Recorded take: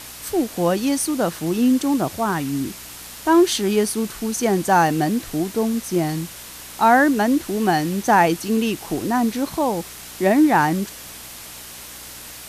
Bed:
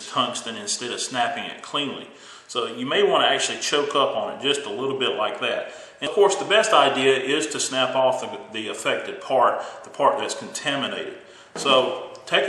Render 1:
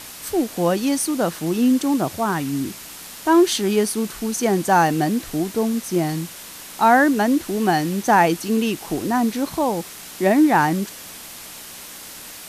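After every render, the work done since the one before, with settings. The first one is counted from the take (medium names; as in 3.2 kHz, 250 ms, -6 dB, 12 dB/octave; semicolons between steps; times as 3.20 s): de-hum 60 Hz, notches 2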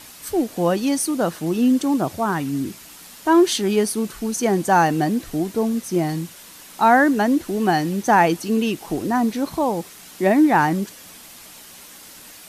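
noise reduction 6 dB, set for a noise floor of -38 dBFS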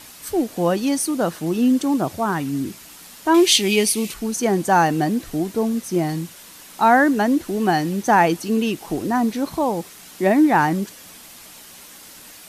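3.34–4.14 s: resonant high shelf 1.9 kHz +6.5 dB, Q 3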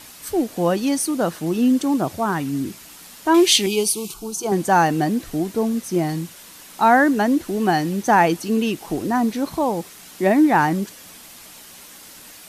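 3.66–4.52 s: static phaser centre 370 Hz, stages 8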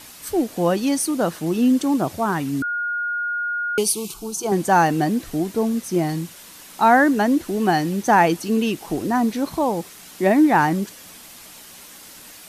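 2.62–3.78 s: bleep 1.43 kHz -21.5 dBFS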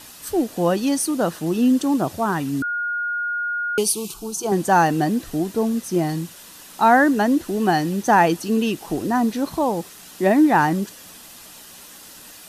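band-stop 2.2 kHz, Q 11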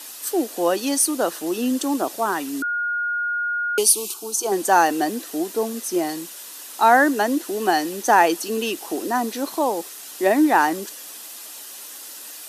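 high-pass 290 Hz 24 dB/octave; treble shelf 4.7 kHz +7 dB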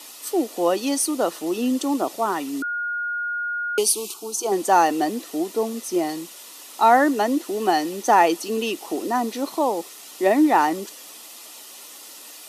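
treble shelf 7.3 kHz -7 dB; band-stop 1.6 kHz, Q 5.2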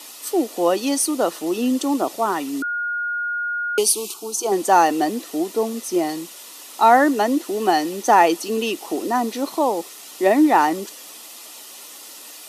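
trim +2 dB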